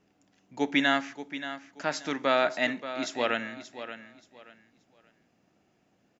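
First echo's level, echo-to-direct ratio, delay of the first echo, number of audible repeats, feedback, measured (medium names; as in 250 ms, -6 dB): -12.0 dB, -11.5 dB, 579 ms, 2, 25%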